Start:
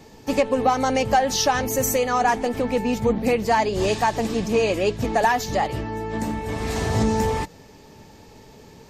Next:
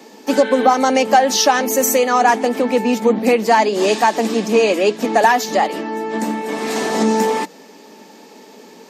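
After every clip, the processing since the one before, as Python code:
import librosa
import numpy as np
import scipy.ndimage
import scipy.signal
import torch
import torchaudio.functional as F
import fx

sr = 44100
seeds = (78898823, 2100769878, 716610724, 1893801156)

y = fx.spec_repair(x, sr, seeds[0], start_s=0.34, length_s=0.37, low_hz=1500.0, high_hz=4200.0, source='after')
y = scipy.signal.sosfilt(scipy.signal.butter(8, 200.0, 'highpass', fs=sr, output='sos'), y)
y = y * librosa.db_to_amplitude(6.5)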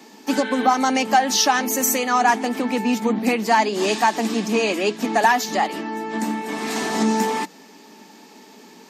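y = fx.peak_eq(x, sr, hz=520.0, db=-9.5, octaves=0.59)
y = y * librosa.db_to_amplitude(-2.0)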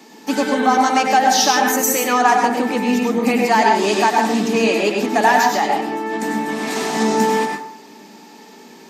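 y = fx.rev_plate(x, sr, seeds[1], rt60_s=0.56, hf_ratio=0.5, predelay_ms=85, drr_db=1.0)
y = y * librosa.db_to_amplitude(1.0)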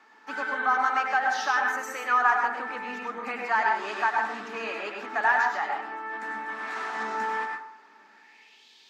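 y = fx.filter_sweep_bandpass(x, sr, from_hz=1400.0, to_hz=3500.0, start_s=8.08, end_s=8.68, q=3.3)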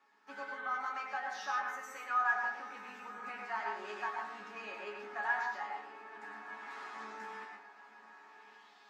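y = fx.resonator_bank(x, sr, root=49, chord='sus4', decay_s=0.2)
y = fx.echo_diffused(y, sr, ms=1119, feedback_pct=56, wet_db=-15.0)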